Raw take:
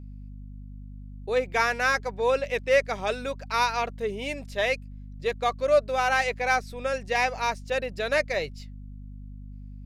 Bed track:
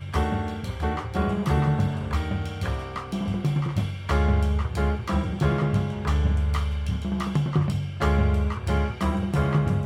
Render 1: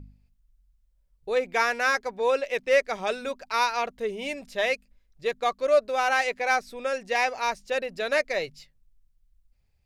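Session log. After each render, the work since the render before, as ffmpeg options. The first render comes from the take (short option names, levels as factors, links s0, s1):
-af "bandreject=f=50:t=h:w=4,bandreject=f=100:t=h:w=4,bandreject=f=150:t=h:w=4,bandreject=f=200:t=h:w=4,bandreject=f=250:t=h:w=4"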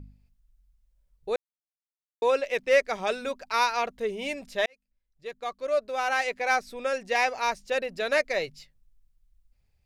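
-filter_complex "[0:a]asplit=4[s0][s1][s2][s3];[s0]atrim=end=1.36,asetpts=PTS-STARTPTS,afade=t=out:st=1.356:d=0.004:c=hsin[s4];[s1]atrim=start=1.36:end=2.22,asetpts=PTS-STARTPTS,volume=0[s5];[s2]atrim=start=2.22:end=4.66,asetpts=PTS-STARTPTS,afade=t=in:d=0.004:c=hsin,afade=t=out:st=2.436:d=0.004:c=hsin[s6];[s3]atrim=start=4.66,asetpts=PTS-STARTPTS,afade=t=in:d=2.04[s7];[s4][s5][s6][s7]concat=n=4:v=0:a=1"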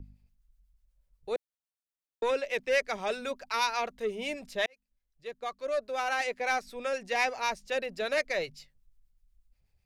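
-filter_complex "[0:a]acrossover=split=810[s0][s1];[s0]aeval=exprs='val(0)*(1-0.5/2+0.5/2*cos(2*PI*8.1*n/s))':c=same[s2];[s1]aeval=exprs='val(0)*(1-0.5/2-0.5/2*cos(2*PI*8.1*n/s))':c=same[s3];[s2][s3]amix=inputs=2:normalize=0,acrossover=split=270|2000[s4][s5][s6];[s5]asoftclip=type=tanh:threshold=0.0631[s7];[s4][s7][s6]amix=inputs=3:normalize=0"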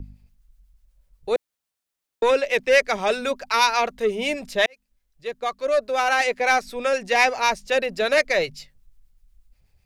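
-af "volume=3.16"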